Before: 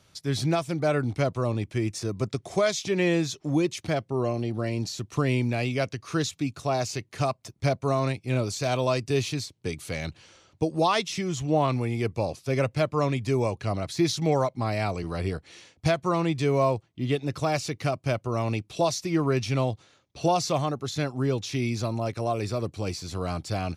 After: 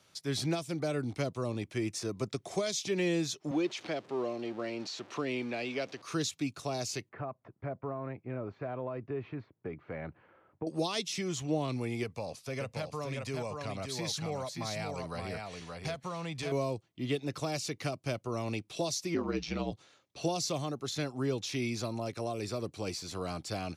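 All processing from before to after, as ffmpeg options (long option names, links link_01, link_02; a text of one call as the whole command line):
ffmpeg -i in.wav -filter_complex "[0:a]asettb=1/sr,asplit=3[link_01][link_02][link_03];[link_01]atrim=end=3.514[link_04];[link_02]atrim=start=3.51:end=6.02,asetpts=PTS-STARTPTS,afade=type=in:duration=0.004:curve=qsin,afade=type=out:start_time=2.506:duration=0.004:curve=qsin,aeval=exprs='val(0)+0.5*0.0119*sgn(val(0))':channel_layout=same,highpass=270,lowpass=4100[link_05];[link_03]atrim=start=6.016[link_06];[link_04][link_05]acrossfade=duration=0.004:curve1=hsin:curve2=qsin[link_07];[link_07][link_06]acrossfade=duration=0.004:curve1=qsin:curve2=hsin,asettb=1/sr,asplit=3[link_08][link_09][link_10];[link_08]atrim=end=7.094[link_11];[link_09]atrim=start=7.09:end=10.67,asetpts=PTS-STARTPTS,afade=type=in:duration=0.004:curve=qsin,afade=type=out:start_time=3.576:duration=0.004:curve=qsin,lowpass=frequency=1700:width=0.5412,lowpass=frequency=1700:width=1.3066,acompressor=threshold=-28dB:ratio=3:attack=3.2:release=140:knee=1:detection=peak[link_12];[link_10]atrim=start=10.666[link_13];[link_11][link_12]acrossfade=duration=0.004:curve1=hsin:curve2=qsin[link_14];[link_14][link_13]acrossfade=duration=0.004:curve1=qsin:curve2=hsin,asettb=1/sr,asplit=3[link_15][link_16][link_17];[link_15]atrim=end=12.034[link_18];[link_16]atrim=start=12.03:end=16.52,asetpts=PTS-STARTPTS,afade=type=in:duration=0.004:curve=qsin,afade=type=out:start_time=4.486:duration=0.004:curve=qsin,equalizer=frequency=340:width_type=o:width=0.36:gain=-11.5,acompressor=threshold=-28dB:ratio=2.5:attack=3.2:release=140:knee=1:detection=peak,aecho=1:1:574:0.562,atrim=end_sample=198009[link_19];[link_17]atrim=start=16.516[link_20];[link_18][link_19]acrossfade=duration=0.004:curve1=hsin:curve2=qsin[link_21];[link_21][link_20]acrossfade=duration=0.004:curve1=qsin:curve2=hsin,asettb=1/sr,asplit=3[link_22][link_23][link_24];[link_22]atrim=end=19.144[link_25];[link_23]atrim=start=19.14:end=19.72,asetpts=PTS-STARTPTS,afade=type=in:duration=0.004:curve=qsin,afade=type=out:start_time=0.576:duration=0.004:curve=qsin,lowpass=frequency=5800:width=0.5412,lowpass=frequency=5800:width=1.3066,aeval=exprs='val(0)*sin(2*PI*57*n/s)':channel_layout=same,asplit=2[link_26][link_27];[link_27]adelay=16,volume=-11dB[link_28];[link_26][link_28]amix=inputs=2:normalize=0,atrim=end_sample=25578[link_29];[link_24]atrim=start=19.716[link_30];[link_25][link_29]acrossfade=duration=0.004:curve1=hsin:curve2=qsin[link_31];[link_31][link_30]acrossfade=duration=0.004:curve1=qsin:curve2=hsin,highpass=frequency=250:poles=1,acrossover=split=440|3000[link_32][link_33][link_34];[link_33]acompressor=threshold=-36dB:ratio=6[link_35];[link_32][link_35][link_34]amix=inputs=3:normalize=0,volume=-2.5dB" out.wav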